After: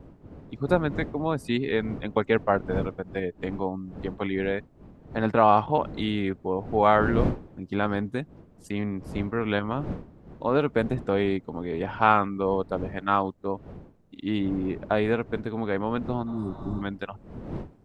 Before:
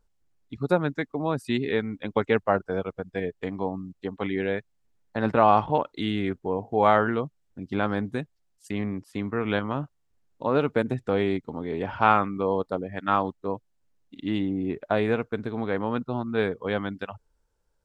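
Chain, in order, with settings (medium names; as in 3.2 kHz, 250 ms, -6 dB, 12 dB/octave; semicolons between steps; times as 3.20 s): wind noise 280 Hz -38 dBFS; spectral replace 16.29–16.79 s, 390–4700 Hz before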